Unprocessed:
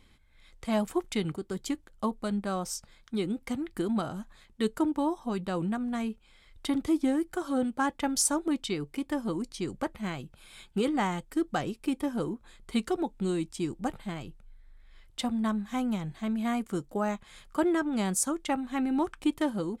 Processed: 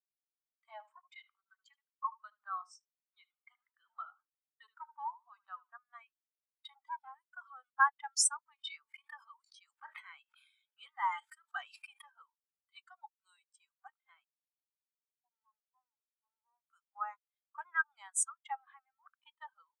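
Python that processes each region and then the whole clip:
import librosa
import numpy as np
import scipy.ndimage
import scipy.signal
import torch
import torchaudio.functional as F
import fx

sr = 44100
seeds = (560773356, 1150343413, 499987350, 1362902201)

y = fx.chain(x, sr, fx.high_shelf(hz=6000.0, db=-8.0),
    fx.echo_feedback(ms=76, feedback_pct=30, wet_db=-10), at=(0.71, 5.75))
y = fx.chain(y, sr, fx.highpass(hz=47.0, slope=12),
    fx.peak_eq(hz=220.0, db=6.0, octaves=3.0),
    fx.doubler(ms=34.0, db=-9.0), at=(6.74, 7.16))
y = fx.chain(y, sr, fx.highpass(hz=520.0, slope=6),
    fx.sustainer(db_per_s=22.0), at=(8.55, 12.1))
y = fx.chain(y, sr, fx.lower_of_two(delay_ms=0.89),
    fx.ladder_lowpass(hz=720.0, resonance_pct=30), at=(14.24, 16.68))
y = fx.chain(y, sr, fx.over_compress(threshold_db=-34.0, ratio=-0.5),
    fx.leveller(passes=1),
    fx.gaussian_blur(sigma=1.8), at=(18.59, 19.12))
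y = fx.leveller(y, sr, passes=2)
y = scipy.signal.sosfilt(scipy.signal.cheby2(4, 70, 220.0, 'highpass', fs=sr, output='sos'), y)
y = fx.spectral_expand(y, sr, expansion=2.5)
y = F.gain(torch.from_numpy(y), -3.0).numpy()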